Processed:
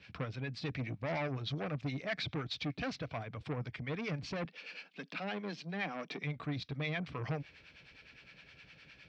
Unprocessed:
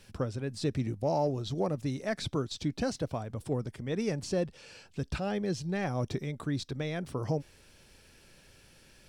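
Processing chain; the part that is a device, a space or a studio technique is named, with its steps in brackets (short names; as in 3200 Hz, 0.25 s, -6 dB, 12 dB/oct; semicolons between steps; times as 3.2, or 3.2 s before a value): guitar amplifier with harmonic tremolo (harmonic tremolo 9.7 Hz, depth 70%, crossover 660 Hz; soft clip -34 dBFS, distortion -10 dB; speaker cabinet 88–4200 Hz, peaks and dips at 98 Hz -8 dB, 220 Hz -8 dB, 370 Hz -10 dB, 550 Hz -6 dB, 890 Hz -6 dB, 2300 Hz +8 dB); 4.45–6.24 steep high-pass 180 Hz 48 dB/oct; gain +5.5 dB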